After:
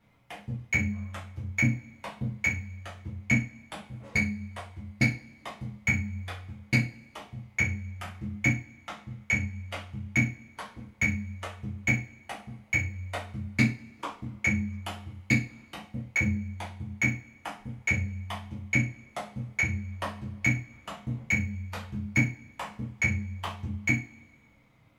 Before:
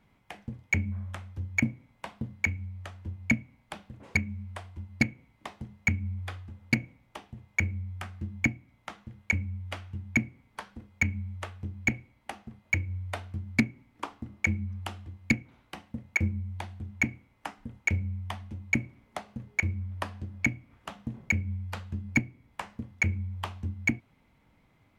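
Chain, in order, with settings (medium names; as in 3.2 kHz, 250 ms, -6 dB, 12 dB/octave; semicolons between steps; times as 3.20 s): two-slope reverb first 0.3 s, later 1.7 s, from -26 dB, DRR -6 dB; trim -5 dB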